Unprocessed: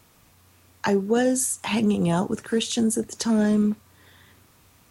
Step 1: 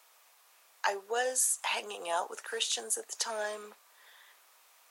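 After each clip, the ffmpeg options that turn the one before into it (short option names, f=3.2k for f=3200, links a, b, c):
-af "highpass=f=600:w=0.5412,highpass=f=600:w=1.3066,volume=-3dB"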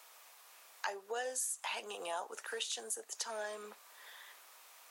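-af "acompressor=threshold=-49dB:ratio=2,volume=3.5dB"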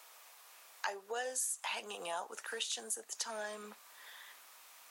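-af "asubboost=boost=6:cutoff=170,volume=1dB"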